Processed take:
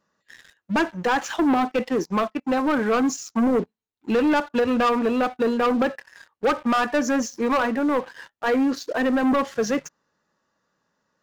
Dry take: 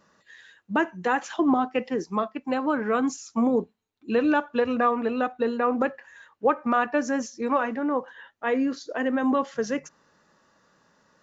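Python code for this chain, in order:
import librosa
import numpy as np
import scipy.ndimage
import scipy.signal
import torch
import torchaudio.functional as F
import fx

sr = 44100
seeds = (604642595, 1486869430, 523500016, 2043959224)

y = fx.leveller(x, sr, passes=3)
y = y * librosa.db_to_amplitude(-4.5)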